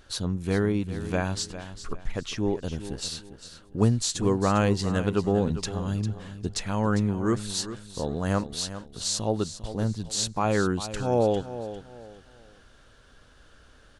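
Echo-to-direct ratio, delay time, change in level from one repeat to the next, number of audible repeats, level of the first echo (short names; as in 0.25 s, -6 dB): -12.0 dB, 0.401 s, -10.5 dB, 3, -12.5 dB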